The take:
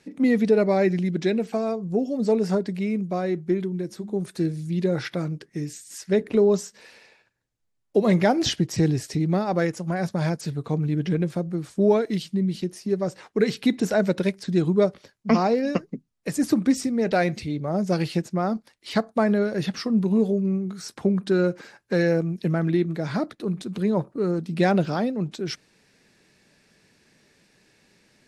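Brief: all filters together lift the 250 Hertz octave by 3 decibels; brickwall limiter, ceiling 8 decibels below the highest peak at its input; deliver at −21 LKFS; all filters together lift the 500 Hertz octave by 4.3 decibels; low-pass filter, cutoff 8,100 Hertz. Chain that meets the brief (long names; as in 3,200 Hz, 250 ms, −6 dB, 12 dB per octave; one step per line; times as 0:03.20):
low-pass filter 8,100 Hz
parametric band 250 Hz +3 dB
parametric band 500 Hz +4.5 dB
level +2.5 dB
brickwall limiter −9.5 dBFS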